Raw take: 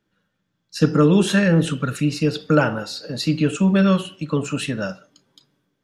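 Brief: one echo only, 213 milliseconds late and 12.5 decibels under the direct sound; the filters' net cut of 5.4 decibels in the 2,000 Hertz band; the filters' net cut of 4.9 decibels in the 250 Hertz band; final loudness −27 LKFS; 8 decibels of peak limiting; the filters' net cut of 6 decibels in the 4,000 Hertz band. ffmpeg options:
ffmpeg -i in.wav -af "equalizer=frequency=250:width_type=o:gain=-7.5,equalizer=frequency=2000:width_type=o:gain=-6.5,equalizer=frequency=4000:width_type=o:gain=-5.5,alimiter=limit=-13.5dB:level=0:latency=1,aecho=1:1:213:0.237,volume=-2dB" out.wav

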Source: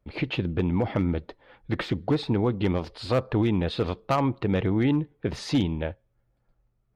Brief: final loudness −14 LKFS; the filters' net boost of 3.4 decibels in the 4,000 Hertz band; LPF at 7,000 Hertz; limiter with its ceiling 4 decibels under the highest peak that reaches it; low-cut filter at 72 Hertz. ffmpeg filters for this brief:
ffmpeg -i in.wav -af "highpass=72,lowpass=7000,equalizer=frequency=4000:width_type=o:gain=4.5,volume=14dB,alimiter=limit=-2dB:level=0:latency=1" out.wav

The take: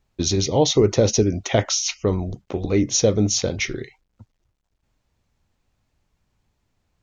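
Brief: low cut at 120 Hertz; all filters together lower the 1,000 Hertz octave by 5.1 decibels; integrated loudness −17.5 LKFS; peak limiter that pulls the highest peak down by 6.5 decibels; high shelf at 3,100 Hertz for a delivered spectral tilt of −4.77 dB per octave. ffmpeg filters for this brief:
ffmpeg -i in.wav -af "highpass=120,equalizer=frequency=1000:width_type=o:gain=-7,highshelf=frequency=3100:gain=-9,volume=7.5dB,alimiter=limit=-4dB:level=0:latency=1" out.wav

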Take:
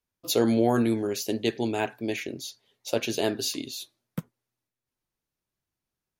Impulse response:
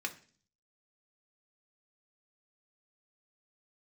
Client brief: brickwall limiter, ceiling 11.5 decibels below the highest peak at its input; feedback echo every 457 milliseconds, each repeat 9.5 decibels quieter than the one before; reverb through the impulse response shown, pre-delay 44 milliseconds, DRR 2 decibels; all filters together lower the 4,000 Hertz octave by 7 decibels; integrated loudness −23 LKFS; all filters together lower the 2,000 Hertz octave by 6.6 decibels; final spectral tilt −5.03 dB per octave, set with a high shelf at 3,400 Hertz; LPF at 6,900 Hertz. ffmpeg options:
-filter_complex "[0:a]lowpass=6900,equalizer=frequency=2000:width_type=o:gain=-6.5,highshelf=frequency=3400:gain=-4.5,equalizer=frequency=4000:width_type=o:gain=-3,alimiter=limit=-23dB:level=0:latency=1,aecho=1:1:457|914|1371|1828:0.335|0.111|0.0365|0.012,asplit=2[link_01][link_02];[1:a]atrim=start_sample=2205,adelay=44[link_03];[link_02][link_03]afir=irnorm=-1:irlink=0,volume=-4.5dB[link_04];[link_01][link_04]amix=inputs=2:normalize=0,volume=9.5dB"

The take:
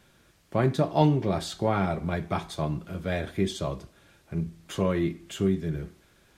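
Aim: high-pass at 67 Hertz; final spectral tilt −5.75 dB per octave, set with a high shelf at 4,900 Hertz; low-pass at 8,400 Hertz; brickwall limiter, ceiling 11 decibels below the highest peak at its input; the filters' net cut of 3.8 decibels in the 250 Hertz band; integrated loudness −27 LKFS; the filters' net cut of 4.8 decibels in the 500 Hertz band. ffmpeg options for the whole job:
ffmpeg -i in.wav -af "highpass=67,lowpass=8400,equalizer=frequency=250:width_type=o:gain=-4.5,equalizer=frequency=500:width_type=o:gain=-5,highshelf=frequency=4900:gain=-3.5,volume=7dB,alimiter=limit=-14.5dB:level=0:latency=1" out.wav

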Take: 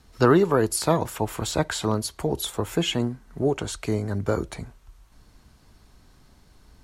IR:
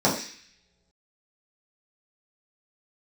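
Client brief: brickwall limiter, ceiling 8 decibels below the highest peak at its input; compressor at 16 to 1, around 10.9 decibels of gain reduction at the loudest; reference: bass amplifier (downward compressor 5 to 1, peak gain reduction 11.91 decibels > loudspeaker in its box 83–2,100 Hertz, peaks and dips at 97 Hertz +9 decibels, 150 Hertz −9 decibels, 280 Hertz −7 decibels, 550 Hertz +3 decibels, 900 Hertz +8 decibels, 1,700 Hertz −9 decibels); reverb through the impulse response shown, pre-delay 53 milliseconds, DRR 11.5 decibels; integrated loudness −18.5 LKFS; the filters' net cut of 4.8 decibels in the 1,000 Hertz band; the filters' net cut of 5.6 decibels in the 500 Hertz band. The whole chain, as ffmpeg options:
-filter_complex "[0:a]equalizer=frequency=500:width_type=o:gain=-6,equalizer=frequency=1000:width_type=o:gain=-8.5,acompressor=threshold=-26dB:ratio=16,alimiter=limit=-23.5dB:level=0:latency=1,asplit=2[link_01][link_02];[1:a]atrim=start_sample=2205,adelay=53[link_03];[link_02][link_03]afir=irnorm=-1:irlink=0,volume=-28.5dB[link_04];[link_01][link_04]amix=inputs=2:normalize=0,acompressor=threshold=-40dB:ratio=5,highpass=frequency=83:width=0.5412,highpass=frequency=83:width=1.3066,equalizer=frequency=97:width_type=q:width=4:gain=9,equalizer=frequency=150:width_type=q:width=4:gain=-9,equalizer=frequency=280:width_type=q:width=4:gain=-7,equalizer=frequency=550:width_type=q:width=4:gain=3,equalizer=frequency=900:width_type=q:width=4:gain=8,equalizer=frequency=1700:width_type=q:width=4:gain=-9,lowpass=frequency=2100:width=0.5412,lowpass=frequency=2100:width=1.3066,volume=26.5dB"

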